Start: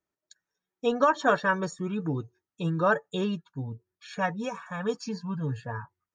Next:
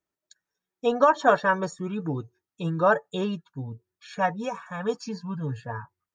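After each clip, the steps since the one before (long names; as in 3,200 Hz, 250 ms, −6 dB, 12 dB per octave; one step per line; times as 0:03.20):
dynamic equaliser 740 Hz, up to +6 dB, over −39 dBFS, Q 1.3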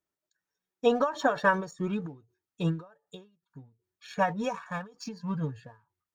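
in parallel at −4.5 dB: dead-zone distortion −44 dBFS
on the sum: every ending faded ahead of time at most 160 dB per second
level −2.5 dB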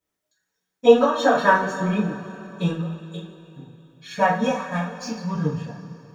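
coupled-rooms reverb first 0.35 s, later 3.1 s, from −18 dB, DRR −9 dB
level −1 dB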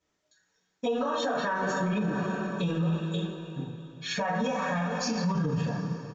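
downward compressor 8 to 1, threshold −24 dBFS, peak gain reduction 17 dB
brickwall limiter −27 dBFS, peak gain reduction 11.5 dB
downsampling to 16,000 Hz
level +6 dB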